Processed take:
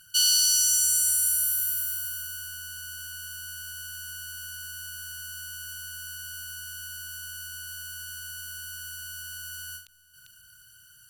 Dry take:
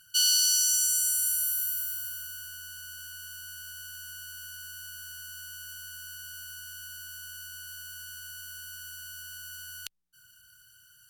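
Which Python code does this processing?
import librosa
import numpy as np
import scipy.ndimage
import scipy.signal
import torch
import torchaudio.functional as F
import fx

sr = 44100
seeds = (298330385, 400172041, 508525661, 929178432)

p1 = fx.peak_eq(x, sr, hz=9700.0, db=4.0, octaves=0.25)
p2 = np.clip(p1, -10.0 ** (-25.0 / 20.0), 10.0 ** (-25.0 / 20.0))
p3 = p1 + (p2 * 10.0 ** (-7.5 / 20.0))
p4 = fx.low_shelf(p3, sr, hz=460.0, db=3.0)
p5 = p4 + 10.0 ** (-21.0 / 20.0) * np.pad(p4, (int(397 * sr / 1000.0), 0))[:len(p4)]
y = fx.end_taper(p5, sr, db_per_s=140.0)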